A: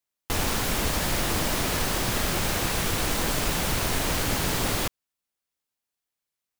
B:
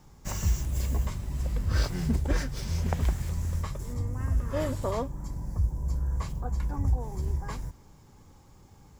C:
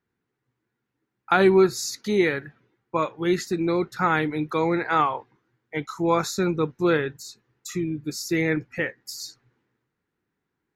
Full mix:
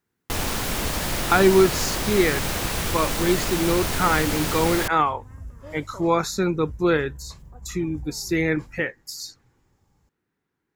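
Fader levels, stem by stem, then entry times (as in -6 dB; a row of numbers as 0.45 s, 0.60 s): 0.0 dB, -11.5 dB, +1.0 dB; 0.00 s, 1.10 s, 0.00 s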